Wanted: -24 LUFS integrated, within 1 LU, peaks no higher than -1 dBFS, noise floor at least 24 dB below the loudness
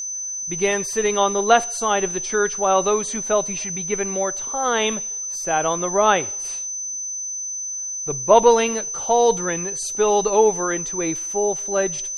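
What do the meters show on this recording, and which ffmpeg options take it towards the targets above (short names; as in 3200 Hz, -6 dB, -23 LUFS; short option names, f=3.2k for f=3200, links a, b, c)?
steady tone 6100 Hz; tone level -26 dBFS; loudness -20.5 LUFS; peak -1.5 dBFS; loudness target -24.0 LUFS
-> -af "bandreject=f=6.1k:w=30"
-af "volume=-3.5dB"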